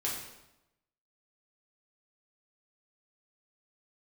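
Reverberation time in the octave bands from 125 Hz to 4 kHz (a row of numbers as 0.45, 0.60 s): 1.0, 0.95, 0.95, 0.90, 0.80, 0.75 s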